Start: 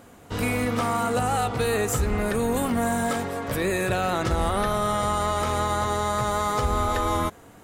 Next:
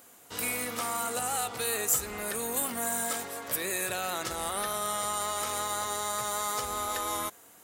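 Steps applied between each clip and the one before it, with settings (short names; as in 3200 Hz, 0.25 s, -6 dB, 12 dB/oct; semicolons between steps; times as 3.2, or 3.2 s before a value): RIAA curve recording; gain -8 dB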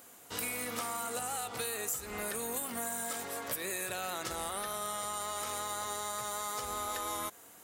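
compressor, threshold -33 dBFS, peak gain reduction 11.5 dB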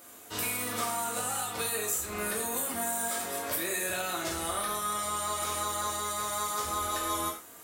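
non-linear reverb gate 0.15 s falling, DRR -3.5 dB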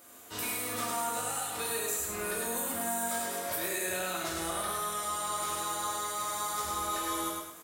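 feedback echo 0.103 s, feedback 36%, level -3 dB; gain -3.5 dB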